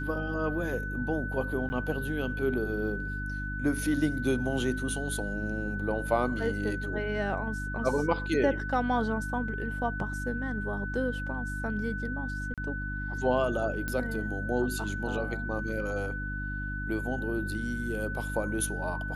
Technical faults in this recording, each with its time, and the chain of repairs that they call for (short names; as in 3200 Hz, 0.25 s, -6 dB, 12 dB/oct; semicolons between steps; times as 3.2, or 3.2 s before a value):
hum 50 Hz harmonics 6 -36 dBFS
tone 1500 Hz -36 dBFS
1.69–1.7 gap 10 ms
12.54–12.58 gap 37 ms
13.88 pop -18 dBFS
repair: de-click; de-hum 50 Hz, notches 6; notch 1500 Hz, Q 30; interpolate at 1.69, 10 ms; interpolate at 12.54, 37 ms